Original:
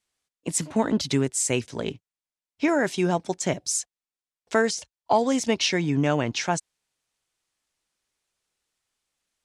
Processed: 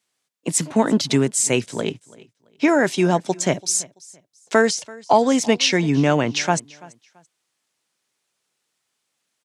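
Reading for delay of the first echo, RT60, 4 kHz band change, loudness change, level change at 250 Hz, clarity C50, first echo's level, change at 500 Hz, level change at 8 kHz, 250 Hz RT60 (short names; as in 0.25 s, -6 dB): 0.335 s, none, +5.5 dB, +5.5 dB, +5.5 dB, none, -22.5 dB, +5.5 dB, +5.5 dB, none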